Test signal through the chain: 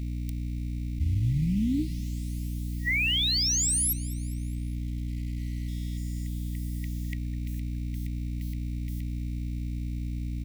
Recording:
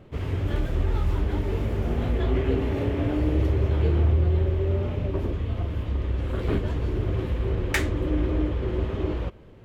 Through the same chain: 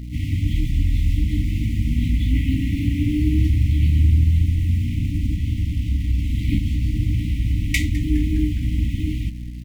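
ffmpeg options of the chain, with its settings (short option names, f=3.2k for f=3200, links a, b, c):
-filter_complex "[0:a]aeval=exprs='val(0)+0.0158*(sin(2*PI*60*n/s)+sin(2*PI*2*60*n/s)/2+sin(2*PI*3*60*n/s)/3+sin(2*PI*4*60*n/s)/4+sin(2*PI*5*60*n/s)/5)':c=same,asplit=2[a][b];[b]acrusher=bits=6:mix=0:aa=0.000001,volume=-6.5dB[c];[a][c]amix=inputs=2:normalize=0,afftfilt=real='re*(1-between(b*sr/4096,320,1900))':imag='im*(1-between(b*sr/4096,320,1900))':win_size=4096:overlap=0.75,asplit=5[d][e][f][g][h];[e]adelay=206,afreqshift=-95,volume=-19dB[i];[f]adelay=412,afreqshift=-190,volume=-24.8dB[j];[g]adelay=618,afreqshift=-285,volume=-30.7dB[k];[h]adelay=824,afreqshift=-380,volume=-36.5dB[l];[d][i][j][k][l]amix=inputs=5:normalize=0,volume=2dB"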